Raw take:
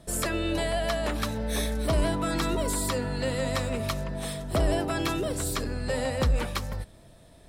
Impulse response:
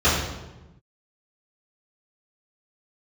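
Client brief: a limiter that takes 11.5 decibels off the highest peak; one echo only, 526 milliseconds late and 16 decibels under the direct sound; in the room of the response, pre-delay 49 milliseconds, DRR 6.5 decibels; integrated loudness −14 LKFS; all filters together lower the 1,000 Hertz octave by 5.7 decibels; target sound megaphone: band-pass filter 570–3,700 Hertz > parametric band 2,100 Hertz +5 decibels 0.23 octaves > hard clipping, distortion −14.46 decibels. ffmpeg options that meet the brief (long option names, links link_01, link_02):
-filter_complex "[0:a]equalizer=frequency=1000:width_type=o:gain=-7,alimiter=level_in=4.5dB:limit=-24dB:level=0:latency=1,volume=-4.5dB,aecho=1:1:526:0.158,asplit=2[link_01][link_02];[1:a]atrim=start_sample=2205,adelay=49[link_03];[link_02][link_03]afir=irnorm=-1:irlink=0,volume=-27dB[link_04];[link_01][link_04]amix=inputs=2:normalize=0,highpass=570,lowpass=3700,equalizer=frequency=2100:width_type=o:width=0.23:gain=5,asoftclip=type=hard:threshold=-38dB,volume=29dB"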